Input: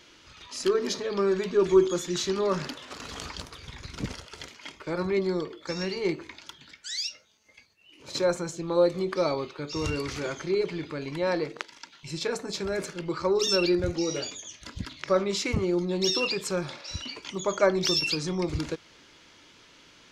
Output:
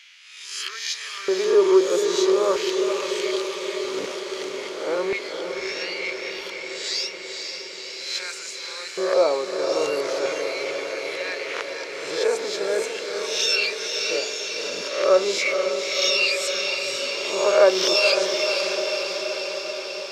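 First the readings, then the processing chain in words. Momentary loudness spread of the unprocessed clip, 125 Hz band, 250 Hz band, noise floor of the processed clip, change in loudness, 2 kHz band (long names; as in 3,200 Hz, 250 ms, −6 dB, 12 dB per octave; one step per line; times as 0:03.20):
16 LU, below −15 dB, −1.0 dB, −36 dBFS, +5.0 dB, +9.5 dB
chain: peak hold with a rise ahead of every peak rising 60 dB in 0.72 s
auto-filter high-pass square 0.39 Hz 470–2,200 Hz
feedback delay with all-pass diffusion 507 ms, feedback 72%, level −5.5 dB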